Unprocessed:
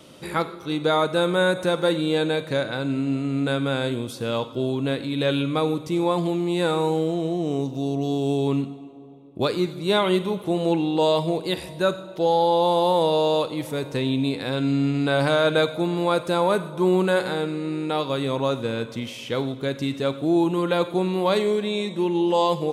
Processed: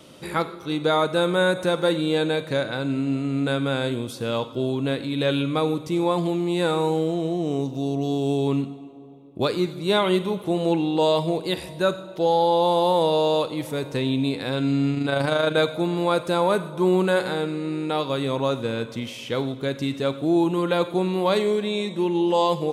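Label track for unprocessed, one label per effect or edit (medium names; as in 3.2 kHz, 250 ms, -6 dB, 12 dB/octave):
14.940000	15.570000	AM modulator 26 Hz, depth 30%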